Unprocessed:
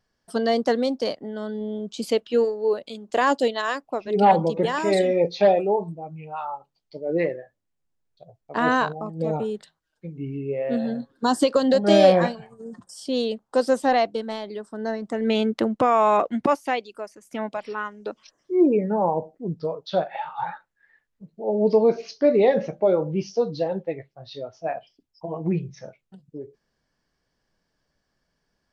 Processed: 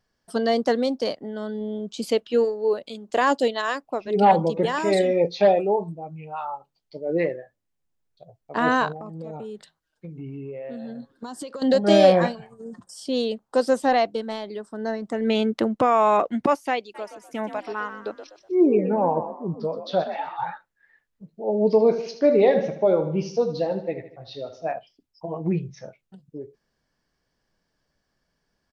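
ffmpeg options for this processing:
ffmpeg -i in.wav -filter_complex "[0:a]asettb=1/sr,asplit=3[link_01][link_02][link_03];[link_01]atrim=end=8.954[link_04];[link_02]atrim=start=8.95:end=11.62,asetpts=PTS-STARTPTS,afade=type=in:duration=0.004:curve=qsin,afade=type=out:start_time=2.666:duration=0.004:curve=qsin,acompressor=threshold=-32dB:ratio=6:attack=3.2:release=140:knee=1:detection=peak[link_05];[link_03]atrim=start=11.616[link_06];[link_04][link_05]acrossfade=duration=0.004:curve1=hsin:curve2=qsin[link_07];[link_07][link_06]acrossfade=duration=0.004:curve1=qsin:curve2=hsin,asplit=3[link_08][link_09][link_10];[link_08]afade=type=out:start_time=16.94:duration=0.02[link_11];[link_09]asplit=5[link_12][link_13][link_14][link_15][link_16];[link_13]adelay=124,afreqshift=50,volume=-10dB[link_17];[link_14]adelay=248,afreqshift=100,volume=-18.9dB[link_18];[link_15]adelay=372,afreqshift=150,volume=-27.7dB[link_19];[link_16]adelay=496,afreqshift=200,volume=-36.6dB[link_20];[link_12][link_17][link_18][link_19][link_20]amix=inputs=5:normalize=0,afade=type=in:start_time=16.94:duration=0.02,afade=type=out:start_time=20.36:duration=0.02[link_21];[link_10]afade=type=in:start_time=20.36:duration=0.02[link_22];[link_11][link_21][link_22]amix=inputs=3:normalize=0,asettb=1/sr,asplit=3[link_23][link_24][link_25];[link_23]atrim=end=21.704[link_26];[link_24]atrim=start=21.7:end=24.72,asetpts=PTS-STARTPTS,afade=type=in:duration=0.004:curve=qsin,afade=type=out:start_time=3.016:duration=0.004:curve=qsin,aecho=1:1:77|154|231|308|385:0.282|0.13|0.0596|0.0274|0.0126,atrim=end_sample=133182[link_27];[link_25]atrim=start=24.716[link_28];[link_26][link_27]acrossfade=duration=0.004:curve1=hsin:curve2=qsin[link_29];[link_29][link_28]acrossfade=duration=0.004:curve1=qsin:curve2=hsin" out.wav

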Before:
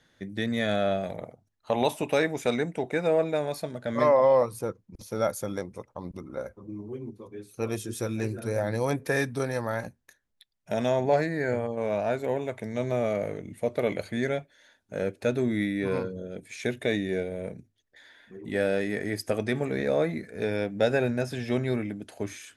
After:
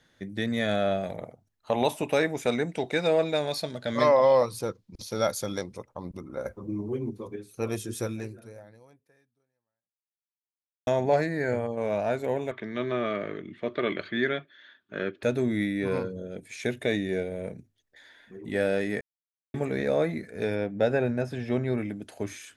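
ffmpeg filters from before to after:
ffmpeg -i in.wav -filter_complex "[0:a]asettb=1/sr,asplit=3[link_01][link_02][link_03];[link_01]atrim=end=2.694[link_04];[link_02]atrim=start=2.69:end=5.77,asetpts=PTS-STARTPTS,afade=type=in:duration=0.004:curve=qsin,afade=type=out:start_time=3.076:duration=0.004:curve=qsin,equalizer=frequency=4200:width_type=o:width=1.2:gain=11.5[link_05];[link_03]atrim=start=5.766[link_06];[link_04][link_05]acrossfade=duration=0.004:curve1=hsin:curve2=qsin[link_07];[link_07][link_06]acrossfade=duration=0.004:curve1=qsin:curve2=hsin,asettb=1/sr,asplit=3[link_08][link_09][link_10];[link_08]atrim=end=6.454[link_11];[link_09]atrim=start=6.45:end=7.36,asetpts=PTS-STARTPTS,afade=type=in:duration=0.004:curve=qsin,afade=type=out:start_time=0.906:duration=0.004:curve=qsin,acontrast=53[link_12];[link_10]atrim=start=7.356[link_13];[link_11][link_12]acrossfade=duration=0.004:curve1=hsin:curve2=qsin[link_14];[link_14][link_13]acrossfade=duration=0.004:curve1=qsin:curve2=hsin,asettb=1/sr,asplit=3[link_15][link_16][link_17];[link_15]atrim=end=12.514[link_18];[link_16]atrim=start=12.51:end=15.23,asetpts=PTS-STARTPTS,afade=type=in:duration=0.004:curve=qsin,afade=type=out:start_time=2.716:duration=0.004:curve=qsin,highpass=170,equalizer=frequency=360:width_type=q:width=4:gain=7,equalizer=frequency=510:width_type=q:width=4:gain=-8,equalizer=frequency=800:width_type=q:width=4:gain=-9,equalizer=frequency=1200:width_type=q:width=4:gain=9,equalizer=frequency=1700:width_type=q:width=4:gain=7,equalizer=frequency=3300:width_type=q:width=4:gain=9,lowpass=frequency=4200:width=0.5412,lowpass=frequency=4200:width=1.3066[link_19];[link_17]atrim=start=15.226[link_20];[link_18][link_19]acrossfade=duration=0.004:curve1=hsin:curve2=qsin[link_21];[link_21][link_20]acrossfade=duration=0.004:curve1=qsin:curve2=hsin,asettb=1/sr,asplit=3[link_22][link_23][link_24];[link_22]atrim=end=20.554[link_25];[link_23]atrim=start=20.55:end=21.78,asetpts=PTS-STARTPTS,afade=type=in:duration=0.004:curve=qsin,afade=type=out:start_time=1.226:duration=0.004:curve=qsin,highshelf=frequency=3100:gain=-10.5[link_26];[link_24]atrim=start=21.776[link_27];[link_25][link_26]acrossfade=duration=0.004:curve1=hsin:curve2=qsin[link_28];[link_28][link_27]acrossfade=duration=0.004:curve1=qsin:curve2=hsin,asplit=4[link_29][link_30][link_31][link_32];[link_29]atrim=end=10.87,asetpts=PTS-STARTPTS,afade=type=out:start_time=8.05:duration=2.82:curve=exp[link_33];[link_30]atrim=start=10.87:end=19.01,asetpts=PTS-STARTPTS,afade=type=in:duration=0.004:curve=hsin,afade=type=out:start_time=8.136:duration=0.004:curve=hsin[link_34];[link_31]atrim=start=19.01:end=19.54,asetpts=PTS-STARTPTS,volume=0[link_35];[link_32]atrim=start=19.54,asetpts=PTS-STARTPTS,afade=type=in:duration=0.004:curve=hsin[link_36];[link_33][link_34][link_35][link_36]concat=n=4:v=0:a=1" out.wav

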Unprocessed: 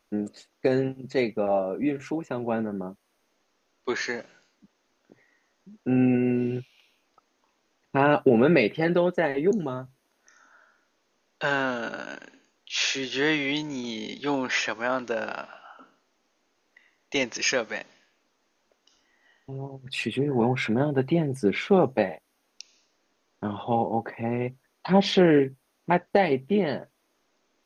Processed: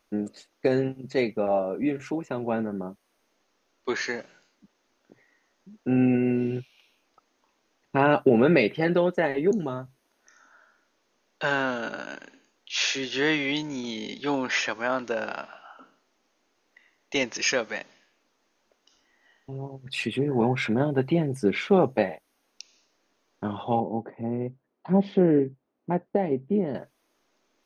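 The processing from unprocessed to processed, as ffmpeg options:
ffmpeg -i in.wav -filter_complex "[0:a]asettb=1/sr,asplit=3[link_01][link_02][link_03];[link_01]atrim=end=23.804[link_04];[link_02]atrim=start=23.8:end=26.75,asetpts=PTS-STARTPTS,afade=type=in:duration=0.004:curve=qsin,afade=type=out:start_time=2.946:duration=0.004:curve=qsin,bandpass=frequency=220:width_type=q:width=0.61[link_05];[link_03]atrim=start=26.746[link_06];[link_04][link_05]acrossfade=duration=0.004:curve1=hsin:curve2=qsin[link_07];[link_07][link_06]acrossfade=duration=0.004:curve1=qsin:curve2=hsin" out.wav

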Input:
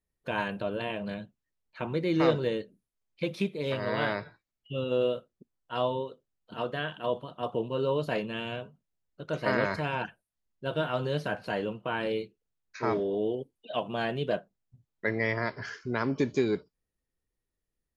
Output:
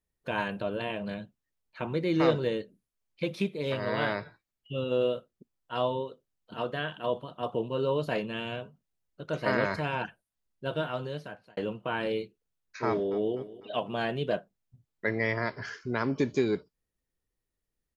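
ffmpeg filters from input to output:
ffmpeg -i in.wav -filter_complex "[0:a]asplit=2[link_01][link_02];[link_02]afade=type=in:start_time=12.86:duration=0.01,afade=type=out:start_time=13.35:duration=0.01,aecho=0:1:250|500|750|1000:0.133352|0.0666761|0.033338|0.016669[link_03];[link_01][link_03]amix=inputs=2:normalize=0,asplit=2[link_04][link_05];[link_04]atrim=end=11.57,asetpts=PTS-STARTPTS,afade=type=out:start_time=10.65:duration=0.92[link_06];[link_05]atrim=start=11.57,asetpts=PTS-STARTPTS,afade=type=in:duration=0.004:curve=hsin[link_07];[link_06][link_07]concat=n=2:v=0:a=1" out.wav

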